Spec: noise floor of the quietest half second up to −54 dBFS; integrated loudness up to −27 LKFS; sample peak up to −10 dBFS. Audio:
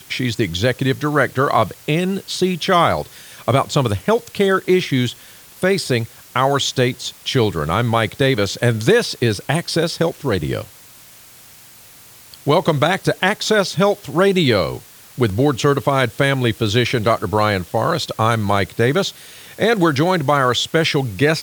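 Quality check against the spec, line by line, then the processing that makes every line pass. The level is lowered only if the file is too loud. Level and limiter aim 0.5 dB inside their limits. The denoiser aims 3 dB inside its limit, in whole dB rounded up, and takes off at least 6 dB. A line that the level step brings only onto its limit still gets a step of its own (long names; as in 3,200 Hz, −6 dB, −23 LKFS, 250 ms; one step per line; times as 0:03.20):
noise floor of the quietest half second −44 dBFS: out of spec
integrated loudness −18.0 LKFS: out of spec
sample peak −2.5 dBFS: out of spec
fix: broadband denoise 6 dB, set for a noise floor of −44 dBFS
level −9.5 dB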